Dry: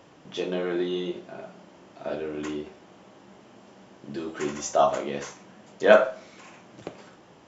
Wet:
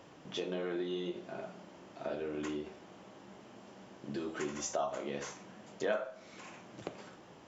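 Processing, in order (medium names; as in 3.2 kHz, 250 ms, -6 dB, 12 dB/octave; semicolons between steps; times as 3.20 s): compression 3:1, threshold -33 dBFS, peak gain reduction 16.5 dB; trim -2.5 dB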